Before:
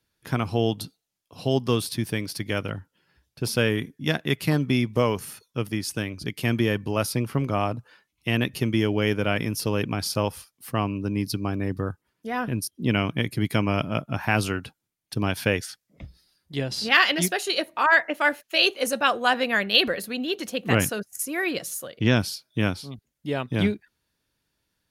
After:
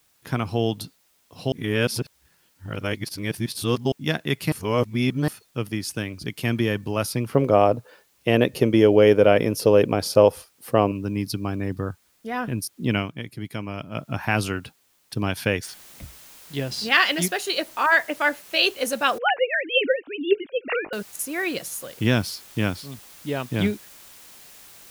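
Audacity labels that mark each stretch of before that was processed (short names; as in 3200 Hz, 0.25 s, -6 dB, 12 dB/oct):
1.520000	3.920000	reverse
4.520000	5.280000	reverse
7.330000	10.920000	bell 510 Hz +14.5 dB 1.2 oct
12.970000	14.040000	dip -8.5 dB, fades 0.13 s
15.630000	15.630000	noise floor step -64 dB -47 dB
19.180000	20.930000	sine-wave speech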